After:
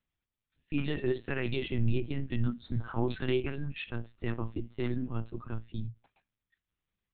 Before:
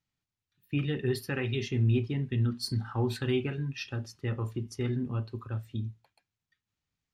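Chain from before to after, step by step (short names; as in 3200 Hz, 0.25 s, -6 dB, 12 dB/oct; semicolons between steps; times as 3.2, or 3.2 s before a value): dynamic EQ 190 Hz, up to -4 dB, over -43 dBFS, Q 2.3; LPC vocoder at 8 kHz pitch kept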